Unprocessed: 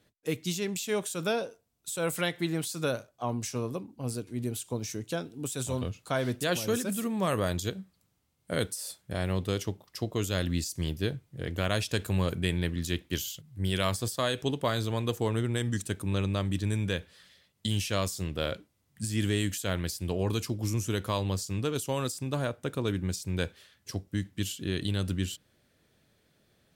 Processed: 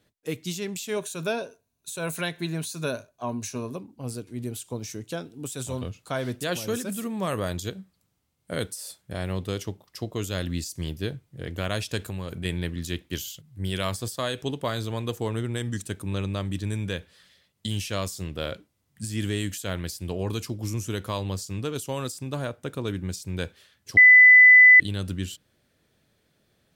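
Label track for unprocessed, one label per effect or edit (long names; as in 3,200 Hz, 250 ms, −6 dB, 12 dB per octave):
0.960000	3.760000	EQ curve with evenly spaced ripples crests per octave 1.5, crest to trough 7 dB
12.010000	12.450000	downward compressor 3 to 1, threshold −30 dBFS
23.970000	24.800000	beep over 2,000 Hz −8.5 dBFS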